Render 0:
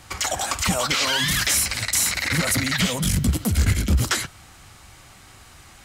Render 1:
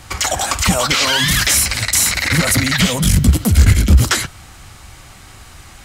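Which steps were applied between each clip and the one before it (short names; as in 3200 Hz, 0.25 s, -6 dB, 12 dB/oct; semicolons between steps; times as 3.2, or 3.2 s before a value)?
low shelf 79 Hz +6.5 dB; gain +6.5 dB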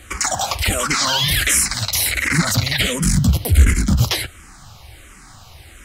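endless phaser -1.4 Hz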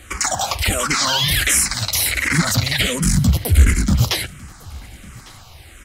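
echo 1.152 s -24 dB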